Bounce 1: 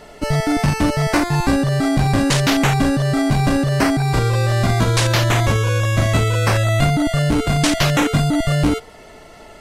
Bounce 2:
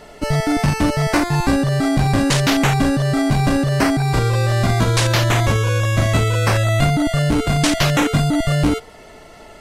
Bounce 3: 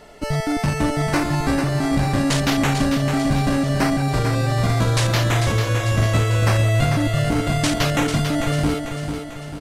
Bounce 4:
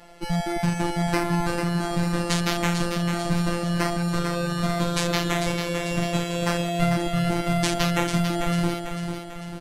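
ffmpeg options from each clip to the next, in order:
-af anull
-af "aecho=1:1:445|890|1335|1780|2225|2670:0.447|0.228|0.116|0.0593|0.0302|0.0154,volume=-4dB"
-af "afftfilt=real='hypot(re,im)*cos(PI*b)':imag='0':win_size=1024:overlap=0.75"

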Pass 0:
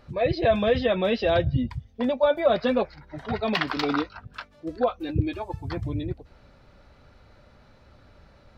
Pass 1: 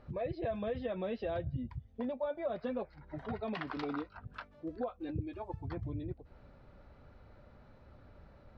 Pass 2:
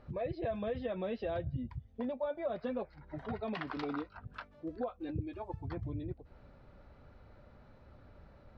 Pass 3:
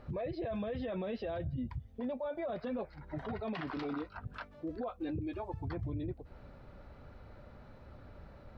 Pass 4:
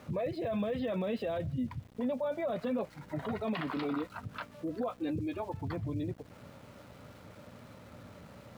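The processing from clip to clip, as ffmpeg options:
-af "lowpass=f=1.3k:p=1,acompressor=threshold=-36dB:ratio=2.5,volume=-3dB"
-af anull
-af "alimiter=level_in=11.5dB:limit=-24dB:level=0:latency=1:release=23,volume=-11.5dB,volume=4.5dB"
-af "aeval=exprs='val(0)+0.00158*(sin(2*PI*60*n/s)+sin(2*PI*2*60*n/s)/2+sin(2*PI*3*60*n/s)/3+sin(2*PI*4*60*n/s)/4+sin(2*PI*5*60*n/s)/5)':c=same,highpass=f=100:w=0.5412,highpass=f=100:w=1.3066,equalizer=f=130:t=q:w=4:g=-4,equalizer=f=360:t=q:w=4:g=-5,equalizer=f=780:t=q:w=4:g=-4,equalizer=f=1.6k:t=q:w=4:g=-4,lowpass=f=4.7k:w=0.5412,lowpass=f=4.7k:w=1.3066,aeval=exprs='val(0)*gte(abs(val(0)),0.00106)':c=same,volume=5.5dB"

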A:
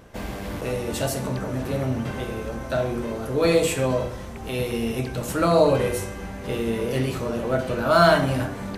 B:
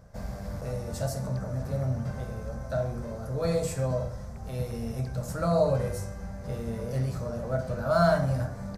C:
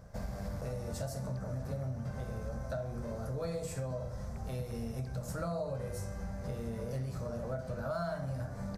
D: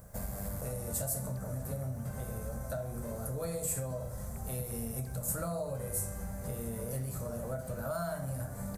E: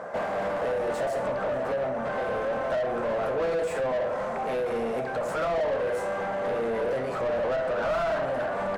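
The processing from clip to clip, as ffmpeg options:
-af "firequalizer=gain_entry='entry(160,0);entry(320,-18);entry(580,-3);entry(920,-10);entry(1400,-8);entry(2900,-21);entry(4900,-5);entry(9900,-10)':delay=0.05:min_phase=1,volume=-1dB"
-af "acompressor=threshold=-35dB:ratio=5"
-af "aexciter=amount=7:drive=6.4:freq=7.6k"
-filter_complex "[0:a]highpass=370,lowpass=2.9k,asplit=2[a][b];[b]highpass=f=720:p=1,volume=28dB,asoftclip=type=tanh:threshold=-27dB[c];[a][c]amix=inputs=2:normalize=0,lowpass=f=1.1k:p=1,volume=-6dB,volume=8dB"

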